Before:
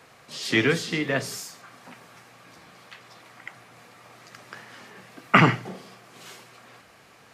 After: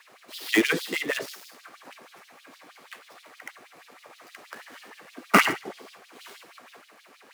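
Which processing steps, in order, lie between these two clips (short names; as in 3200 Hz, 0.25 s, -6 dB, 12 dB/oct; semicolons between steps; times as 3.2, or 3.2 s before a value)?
switching dead time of 0.078 ms; LFO high-pass sine 6.3 Hz 250–3900 Hz; gain -1.5 dB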